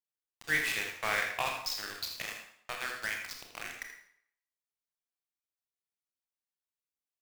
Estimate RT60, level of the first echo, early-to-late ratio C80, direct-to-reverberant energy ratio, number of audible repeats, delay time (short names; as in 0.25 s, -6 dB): 0.65 s, -9.0 dB, 6.0 dB, 1.0 dB, 1, 81 ms